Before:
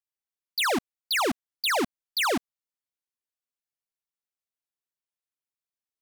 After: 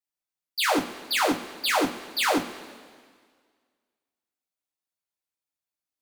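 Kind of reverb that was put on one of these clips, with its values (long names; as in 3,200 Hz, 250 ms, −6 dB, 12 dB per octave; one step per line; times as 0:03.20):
coupled-rooms reverb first 0.2 s, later 1.8 s, from −20 dB, DRR −6 dB
level −5.5 dB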